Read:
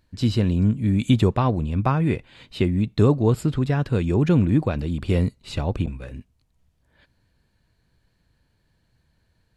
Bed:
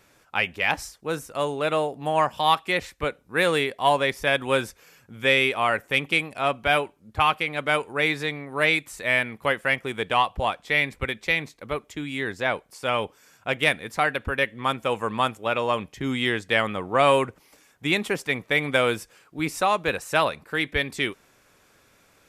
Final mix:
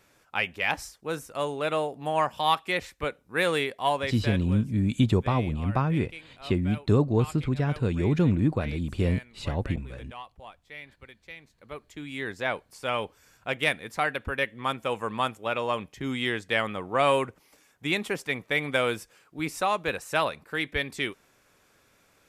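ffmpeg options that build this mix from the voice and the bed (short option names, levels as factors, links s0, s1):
-filter_complex "[0:a]adelay=3900,volume=0.596[s0];[1:a]volume=4.73,afade=t=out:st=3.71:d=0.84:silence=0.133352,afade=t=in:st=11.43:d=0.89:silence=0.141254[s1];[s0][s1]amix=inputs=2:normalize=0"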